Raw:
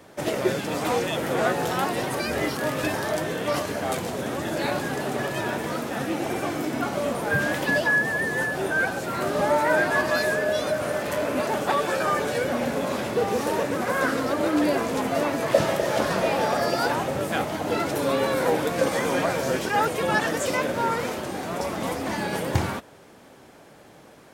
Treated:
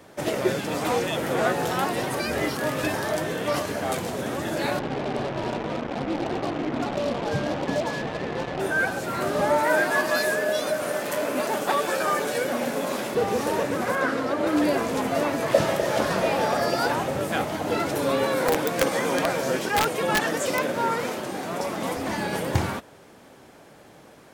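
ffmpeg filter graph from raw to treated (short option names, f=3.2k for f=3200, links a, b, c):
-filter_complex "[0:a]asettb=1/sr,asplit=3[a][b][c];[a]atrim=end=4.794[d];[b]atrim=start=4.79:end=8.6,asetpts=PTS-STARTPTS,afade=t=in:d=0.004:c=qsin,afade=t=out:st=3.806:d=0.004:c=qsin,lowpass=f=1.1k:w=0.5412,lowpass=f=1.1k:w=1.3066,acrusher=bits=4:mix=0:aa=0.5[e];[c]atrim=start=8.596[f];[d][e]acrossfade=d=0.004:c1=hsin:c2=qsin[g];[g][f]acrossfade=d=0.004:c1=qsin:c2=hsin,asettb=1/sr,asplit=3[h][i][j];[h]atrim=end=9.634[k];[i]atrim=start=9.63:end=13.15,asetpts=PTS-STARTPTS,afade=t=in:d=0.004:c=qsin,afade=t=out:st=3.516:d=0.004:c=qsin,highpass=180,highshelf=f=7.2k:g=6.5,aeval=exprs='sgn(val(0))*max(abs(val(0))-0.00422,0)':c=same[l];[j]atrim=start=13.146[m];[k][l]acrossfade=d=0.004:c1=hsin:c2=qsin[n];[n][m]acrossfade=d=0.004:c1=qsin:c2=hsin,asettb=1/sr,asplit=3[o][p][q];[o]atrim=end=13.954[r];[p]atrim=start=13.95:end=14.47,asetpts=PTS-STARTPTS,afade=t=in:d=0.004:c=qsin,afade=t=out:st=0.516:d=0.004:c=qsin,lowpass=f=3.7k:p=1,lowshelf=f=92:g=-10.5[s];[q]atrim=start=14.466[t];[r][s]acrossfade=d=0.004:c1=hsin:c2=qsin[u];[u][t]acrossfade=d=0.004:c1=qsin:c2=hsin,asettb=1/sr,asplit=3[v][w][x];[v]atrim=end=18.254[y];[w]atrim=start=18.25:end=21.97,asetpts=PTS-STARTPTS,afade=t=in:d=0.004:c=qsin,afade=t=out:st=3.716:d=0.004:c=qsin,highpass=130,aeval=exprs='(mod(4.47*val(0)+1,2)-1)/4.47':c=same[z];[x]atrim=start=21.966[aa];[y][z]acrossfade=d=0.004:c1=hsin:c2=qsin[ab];[ab][aa]acrossfade=d=0.004:c1=qsin:c2=hsin"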